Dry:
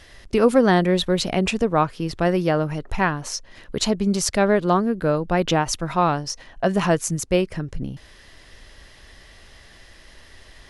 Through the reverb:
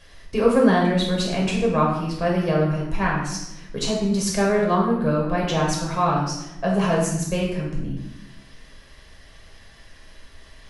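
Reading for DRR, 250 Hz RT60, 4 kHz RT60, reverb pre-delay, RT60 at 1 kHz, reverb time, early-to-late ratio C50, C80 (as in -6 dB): -3.5 dB, 1.5 s, 0.70 s, 6 ms, 0.85 s, 0.90 s, 3.0 dB, 6.0 dB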